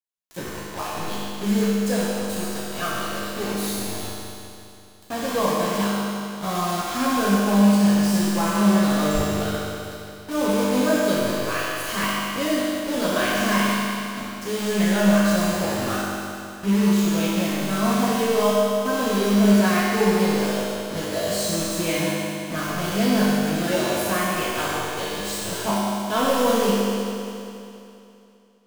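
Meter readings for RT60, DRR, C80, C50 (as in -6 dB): 2.8 s, -8.5 dB, -2.0 dB, -3.5 dB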